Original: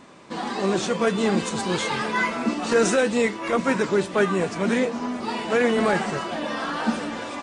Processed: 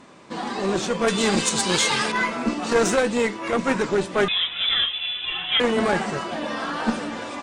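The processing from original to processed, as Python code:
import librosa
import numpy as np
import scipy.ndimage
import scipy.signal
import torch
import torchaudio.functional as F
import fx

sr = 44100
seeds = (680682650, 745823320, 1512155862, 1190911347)

y = fx.cheby_harmonics(x, sr, harmonics=(2, 8), levels_db=(-7, -34), full_scale_db=-7.5)
y = fx.high_shelf(y, sr, hz=2400.0, db=12.0, at=(1.08, 2.12))
y = fx.freq_invert(y, sr, carrier_hz=3700, at=(4.28, 5.6))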